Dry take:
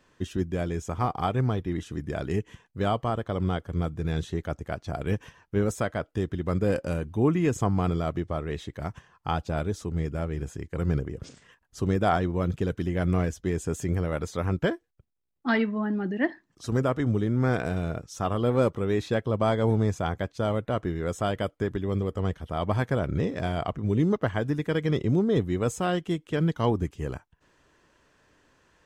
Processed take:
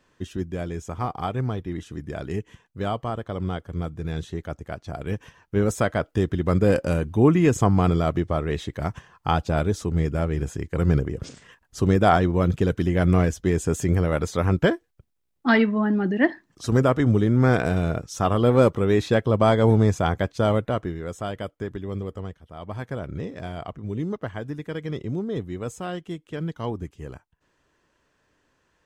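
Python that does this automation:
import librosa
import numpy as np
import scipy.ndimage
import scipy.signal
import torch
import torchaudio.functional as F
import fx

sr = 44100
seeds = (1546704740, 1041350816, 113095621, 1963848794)

y = fx.gain(x, sr, db=fx.line((5.14, -1.0), (5.87, 6.0), (20.56, 6.0), (21.04, -3.0), (22.15, -3.0), (22.41, -12.0), (22.92, -5.0)))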